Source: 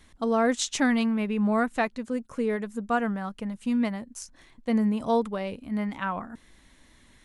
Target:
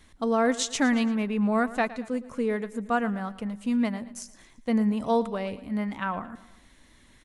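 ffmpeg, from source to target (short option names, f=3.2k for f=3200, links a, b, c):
-af "aecho=1:1:113|226|339|452:0.141|0.0692|0.0339|0.0166"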